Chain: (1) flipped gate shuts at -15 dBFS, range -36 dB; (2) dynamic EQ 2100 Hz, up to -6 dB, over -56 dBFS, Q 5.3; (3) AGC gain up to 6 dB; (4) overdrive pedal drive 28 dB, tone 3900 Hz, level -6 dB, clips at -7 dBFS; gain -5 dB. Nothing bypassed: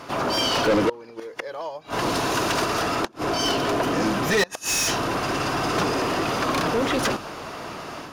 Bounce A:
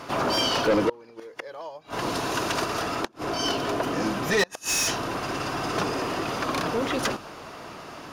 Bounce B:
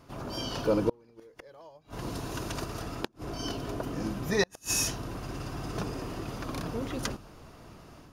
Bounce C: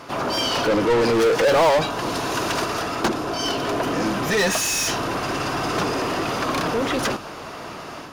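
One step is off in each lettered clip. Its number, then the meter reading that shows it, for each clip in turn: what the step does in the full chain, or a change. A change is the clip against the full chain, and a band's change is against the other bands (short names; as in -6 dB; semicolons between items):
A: 3, momentary loudness spread change +4 LU; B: 4, crest factor change +10.5 dB; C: 1, momentary loudness spread change -5 LU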